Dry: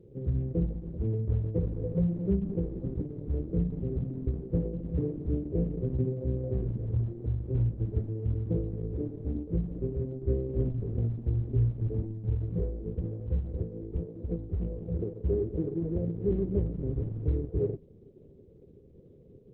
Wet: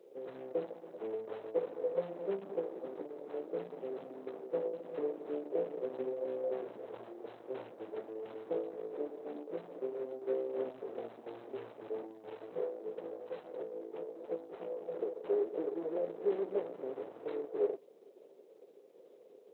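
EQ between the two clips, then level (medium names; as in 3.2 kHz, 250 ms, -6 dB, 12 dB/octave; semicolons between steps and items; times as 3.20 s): ladder high-pass 530 Hz, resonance 25%; +14.5 dB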